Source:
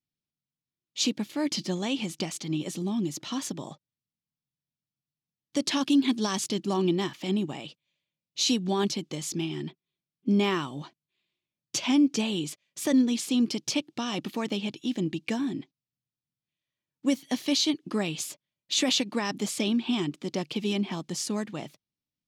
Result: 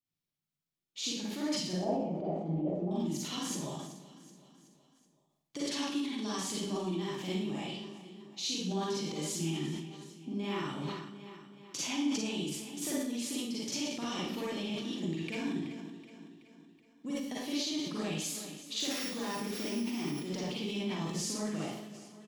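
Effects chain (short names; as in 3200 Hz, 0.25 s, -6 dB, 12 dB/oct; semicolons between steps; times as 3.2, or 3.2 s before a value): 18.8–20.2 sample sorter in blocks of 8 samples; on a send: feedback echo 0.376 s, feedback 53%, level -19.5 dB; on the sum: compressor 6:1, threshold -33 dBFS, peak gain reduction 14.5 dB; 1.73–2.91 synth low-pass 670 Hz, resonance Q 4.9; Schroeder reverb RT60 0.67 s, DRR -7 dB; sustainer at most 52 dB/s; gain -7 dB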